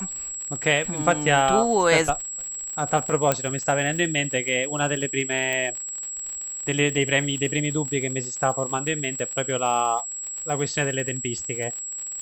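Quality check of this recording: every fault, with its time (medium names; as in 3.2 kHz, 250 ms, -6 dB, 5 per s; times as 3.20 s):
crackle 64 per s -30 dBFS
whine 7.7 kHz -30 dBFS
3.32 s: pop -5 dBFS
5.53 s: pop -13 dBFS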